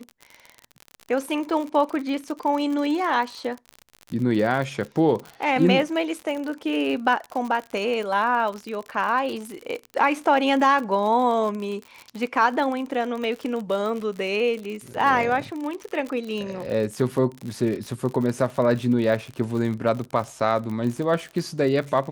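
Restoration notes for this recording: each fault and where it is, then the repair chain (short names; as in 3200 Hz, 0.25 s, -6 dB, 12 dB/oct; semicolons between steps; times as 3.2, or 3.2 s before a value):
crackle 55/s -29 dBFS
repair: de-click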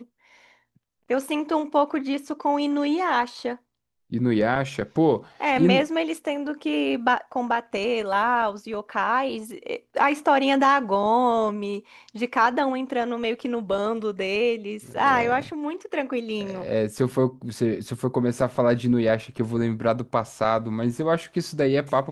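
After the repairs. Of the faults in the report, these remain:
none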